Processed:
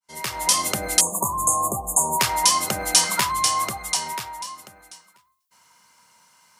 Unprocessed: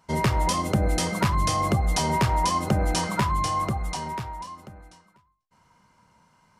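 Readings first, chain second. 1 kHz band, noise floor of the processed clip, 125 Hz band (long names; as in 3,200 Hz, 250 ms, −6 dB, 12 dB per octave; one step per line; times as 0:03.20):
+1.5 dB, −66 dBFS, −12.5 dB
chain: fade in at the beginning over 0.64 s
time-frequency box erased 0:01.00–0:02.20, 1,200–6,400 Hz
spectral tilt +4.5 dB per octave
level +2 dB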